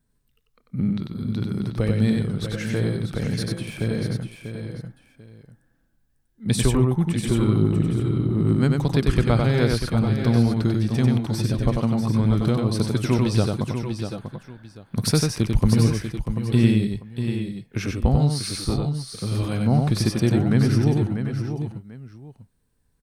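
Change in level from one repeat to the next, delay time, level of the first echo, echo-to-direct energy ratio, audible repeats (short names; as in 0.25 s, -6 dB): no steady repeat, 94 ms, -3.5 dB, -1.5 dB, 4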